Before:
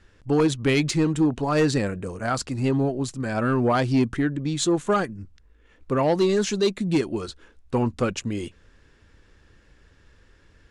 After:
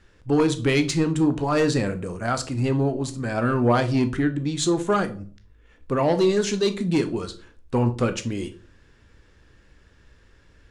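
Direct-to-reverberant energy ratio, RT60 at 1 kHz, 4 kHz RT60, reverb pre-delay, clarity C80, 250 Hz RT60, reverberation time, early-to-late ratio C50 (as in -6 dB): 8.5 dB, 0.35 s, 0.30 s, 17 ms, 21.5 dB, 0.50 s, 0.40 s, 15.0 dB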